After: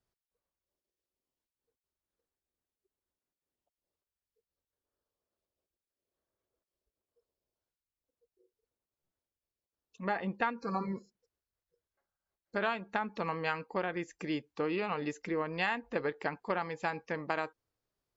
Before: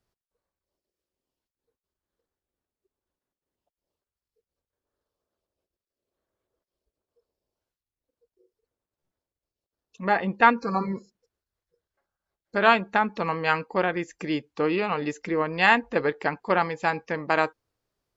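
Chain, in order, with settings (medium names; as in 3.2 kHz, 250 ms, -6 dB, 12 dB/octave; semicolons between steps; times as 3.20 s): compression 5:1, threshold -22 dBFS, peak gain reduction 10.5 dB; trim -6.5 dB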